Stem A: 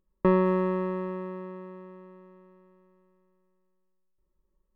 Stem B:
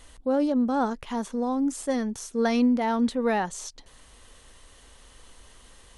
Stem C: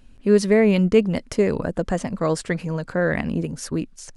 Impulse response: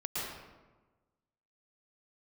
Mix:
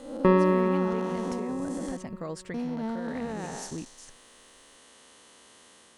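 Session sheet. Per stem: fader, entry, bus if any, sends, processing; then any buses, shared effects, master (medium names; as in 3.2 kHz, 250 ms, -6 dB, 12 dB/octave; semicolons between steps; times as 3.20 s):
+1.5 dB, 0.00 s, no bus, no send, treble shelf 4.3 kHz +11 dB
+2.5 dB, 0.00 s, muted 1.97–2.54 s, bus A, no send, spectral blur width 367 ms; Chebyshev band-pass 230–9600 Hz, order 2; compression, threshold -29 dBFS, peak gain reduction 6.5 dB
-10.0 dB, 0.00 s, bus A, no send, compression, threshold -21 dBFS, peak gain reduction 10.5 dB
bus A: 0.0 dB, peak limiter -26 dBFS, peak gain reduction 8 dB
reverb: none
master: none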